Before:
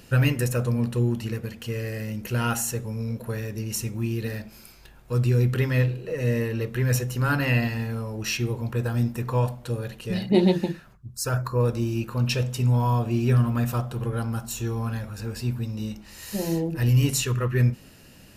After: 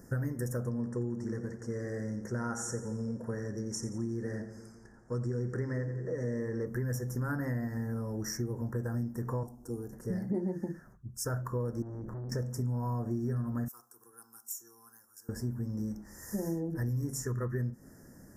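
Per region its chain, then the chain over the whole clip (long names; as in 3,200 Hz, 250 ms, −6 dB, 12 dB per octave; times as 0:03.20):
0:00.69–0:06.66: low-pass filter 8,300 Hz 24 dB per octave + low-shelf EQ 140 Hz −7 dB + echo with a time of its own for lows and highs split 460 Hz, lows 172 ms, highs 87 ms, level −12.5 dB
0:09.43–0:09.93: flat-topped bell 1,800 Hz −9 dB 2.3 octaves + phaser with its sweep stopped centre 560 Hz, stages 6
0:11.82–0:12.32: spectral tilt −3 dB per octave + downward compressor 20 to 1, threshold −22 dBFS + tube saturation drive 34 dB, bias 0.5
0:13.68–0:15.29: first difference + phaser with its sweep stopped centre 600 Hz, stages 6
whole clip: elliptic band-stop filter 1,800–5,500 Hz, stop band 40 dB; parametric band 270 Hz +5.5 dB 1.6 octaves; downward compressor 6 to 1, threshold −25 dBFS; level −5.5 dB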